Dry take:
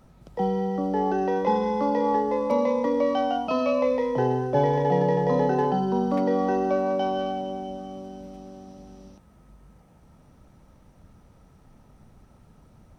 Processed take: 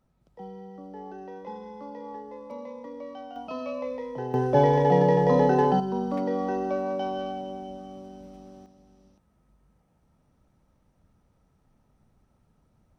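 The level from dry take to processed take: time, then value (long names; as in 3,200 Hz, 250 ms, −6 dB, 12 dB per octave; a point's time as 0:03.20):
−16.5 dB
from 0:03.36 −10 dB
from 0:04.34 +2 dB
from 0:05.80 −4.5 dB
from 0:08.66 −12 dB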